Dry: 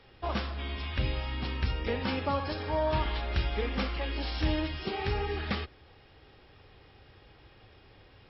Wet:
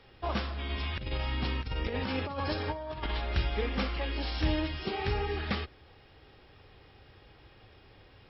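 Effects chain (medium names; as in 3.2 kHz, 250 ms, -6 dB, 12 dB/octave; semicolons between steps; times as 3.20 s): 0.70–3.11 s: compressor with a negative ratio -32 dBFS, ratio -0.5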